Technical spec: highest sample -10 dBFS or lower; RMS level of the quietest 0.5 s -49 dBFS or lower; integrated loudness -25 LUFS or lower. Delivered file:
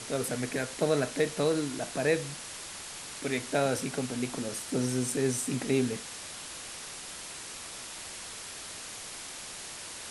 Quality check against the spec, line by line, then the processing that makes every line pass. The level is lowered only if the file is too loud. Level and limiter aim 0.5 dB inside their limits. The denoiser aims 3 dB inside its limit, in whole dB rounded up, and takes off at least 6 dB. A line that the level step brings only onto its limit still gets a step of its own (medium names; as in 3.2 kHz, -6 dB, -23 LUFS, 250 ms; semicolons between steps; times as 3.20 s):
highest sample -13.0 dBFS: pass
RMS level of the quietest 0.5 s -42 dBFS: fail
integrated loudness -32.5 LUFS: pass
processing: noise reduction 10 dB, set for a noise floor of -42 dBFS